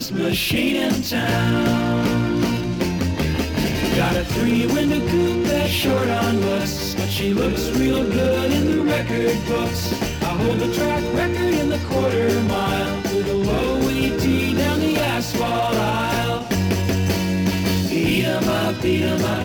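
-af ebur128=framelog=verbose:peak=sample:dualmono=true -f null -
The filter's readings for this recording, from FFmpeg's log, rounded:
Integrated loudness:
  I:         -17.0 LUFS
  Threshold: -27.0 LUFS
Loudness range:
  LRA:         1.0 LU
  Threshold: -37.0 LUFS
  LRA low:   -17.4 LUFS
  LRA high:  -16.5 LUFS
Sample peak:
  Peak:       -6.8 dBFS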